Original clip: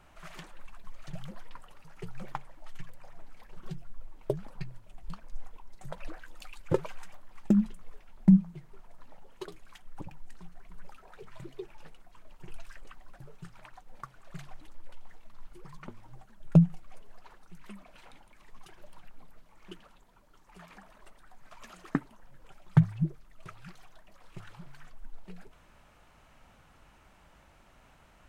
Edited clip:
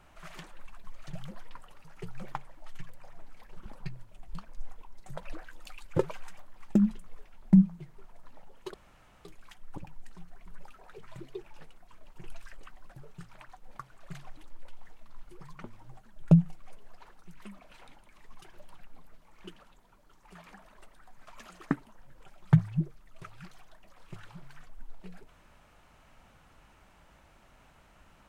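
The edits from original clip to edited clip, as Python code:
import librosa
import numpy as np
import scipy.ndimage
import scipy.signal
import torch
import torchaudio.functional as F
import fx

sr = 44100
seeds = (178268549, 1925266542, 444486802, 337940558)

y = fx.edit(x, sr, fx.cut(start_s=3.66, length_s=0.75),
    fx.insert_room_tone(at_s=9.49, length_s=0.51), tone=tone)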